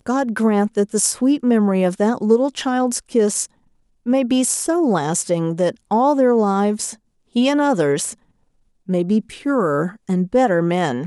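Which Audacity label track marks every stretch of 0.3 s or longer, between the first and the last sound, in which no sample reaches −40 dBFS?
3.460000	4.060000	silence
6.950000	7.350000	silence
8.140000	8.880000	silence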